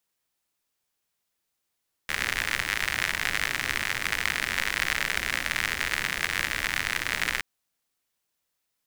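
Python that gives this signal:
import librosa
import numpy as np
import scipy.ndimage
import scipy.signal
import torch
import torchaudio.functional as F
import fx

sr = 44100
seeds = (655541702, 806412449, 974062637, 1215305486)

y = fx.rain(sr, seeds[0], length_s=5.32, drops_per_s=85.0, hz=1900.0, bed_db=-10)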